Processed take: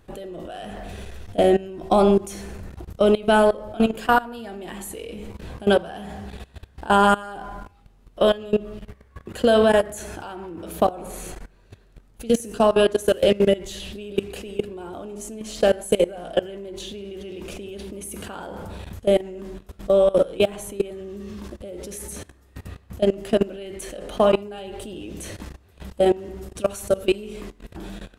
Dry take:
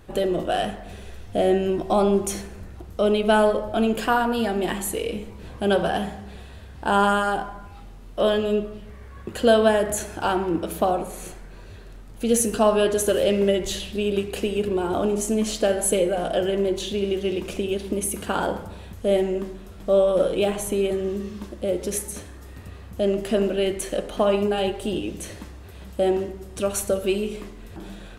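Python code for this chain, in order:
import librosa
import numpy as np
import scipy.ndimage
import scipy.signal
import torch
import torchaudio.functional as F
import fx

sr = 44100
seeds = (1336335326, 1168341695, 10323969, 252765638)

y = fx.level_steps(x, sr, step_db=20)
y = y * librosa.db_to_amplitude(5.0)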